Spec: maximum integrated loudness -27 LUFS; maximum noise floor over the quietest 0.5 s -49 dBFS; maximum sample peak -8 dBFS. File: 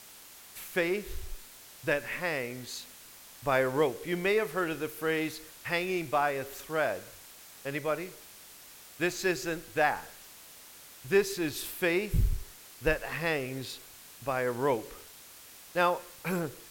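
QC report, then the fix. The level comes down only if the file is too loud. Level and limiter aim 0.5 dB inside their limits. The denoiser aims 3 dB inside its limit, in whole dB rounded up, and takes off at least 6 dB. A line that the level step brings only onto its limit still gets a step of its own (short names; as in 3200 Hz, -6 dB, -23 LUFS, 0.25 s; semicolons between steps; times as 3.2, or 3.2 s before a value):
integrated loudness -31.5 LUFS: OK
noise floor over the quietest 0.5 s -51 dBFS: OK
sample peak -12.0 dBFS: OK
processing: none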